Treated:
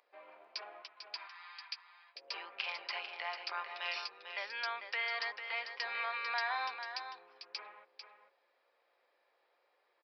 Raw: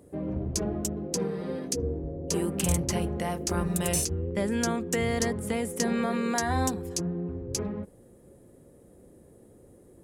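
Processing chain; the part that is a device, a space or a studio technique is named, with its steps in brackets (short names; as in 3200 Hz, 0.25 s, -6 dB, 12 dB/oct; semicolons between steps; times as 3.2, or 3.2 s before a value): 0.82–2.16 elliptic band-pass 950–5100 Hz, stop band 40 dB; musical greeting card (downsampling 11025 Hz; HPF 890 Hz 24 dB/oct; bell 2400 Hz +8.5 dB 0.23 oct); echo 0.446 s -8.5 dB; gain -2.5 dB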